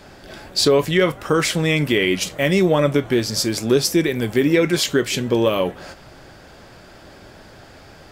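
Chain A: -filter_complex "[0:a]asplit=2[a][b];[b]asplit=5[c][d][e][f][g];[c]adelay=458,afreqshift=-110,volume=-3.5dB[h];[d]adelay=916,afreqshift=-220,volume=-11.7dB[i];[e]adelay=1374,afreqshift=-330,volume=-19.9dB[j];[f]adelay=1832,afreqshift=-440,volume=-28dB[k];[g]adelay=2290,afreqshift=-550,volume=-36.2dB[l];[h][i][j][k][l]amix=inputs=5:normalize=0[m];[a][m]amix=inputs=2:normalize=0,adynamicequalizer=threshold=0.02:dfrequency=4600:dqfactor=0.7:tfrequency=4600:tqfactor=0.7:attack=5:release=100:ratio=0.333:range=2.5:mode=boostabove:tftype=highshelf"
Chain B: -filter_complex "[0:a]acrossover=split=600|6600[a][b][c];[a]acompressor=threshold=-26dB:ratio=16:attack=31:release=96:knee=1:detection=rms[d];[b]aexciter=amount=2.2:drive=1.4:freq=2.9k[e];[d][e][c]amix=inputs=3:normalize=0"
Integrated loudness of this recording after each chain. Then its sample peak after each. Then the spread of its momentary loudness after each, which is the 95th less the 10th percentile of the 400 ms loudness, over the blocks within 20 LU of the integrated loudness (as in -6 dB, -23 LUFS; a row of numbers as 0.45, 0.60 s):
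-16.5, -21.0 LUFS; -1.5, -2.5 dBFS; 9, 6 LU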